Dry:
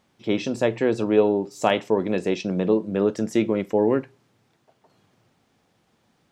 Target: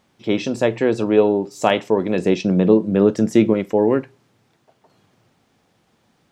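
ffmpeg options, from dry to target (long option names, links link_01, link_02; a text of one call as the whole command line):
ffmpeg -i in.wav -filter_complex "[0:a]asettb=1/sr,asplit=3[link_01][link_02][link_03];[link_01]atrim=end=2.184[link_04];[link_02]atrim=start=2.18:end=3.54,asetpts=PTS-STARTPTS,afade=type=in:duration=0.004:curve=qsin,afade=type=out:start_time=1.356:duration=0.004:curve=qsin,equalizer=frequency=150:width_type=o:width=2.7:gain=5.5[link_05];[link_03]atrim=start=3.536[link_06];[link_04][link_05]acrossfade=duration=0.004:curve1=hsin:curve2=qsin[link_07];[link_07][link_06]acrossfade=duration=0.004:curve1=qsin:curve2=hsin,volume=3.5dB" out.wav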